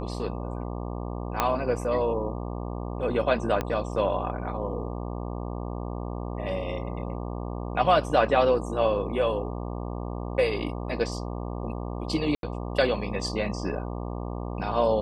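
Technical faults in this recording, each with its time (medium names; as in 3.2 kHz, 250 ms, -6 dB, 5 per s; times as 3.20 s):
buzz 60 Hz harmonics 20 -33 dBFS
1.40 s: pop -8 dBFS
3.61 s: pop -14 dBFS
12.35–12.43 s: dropout 82 ms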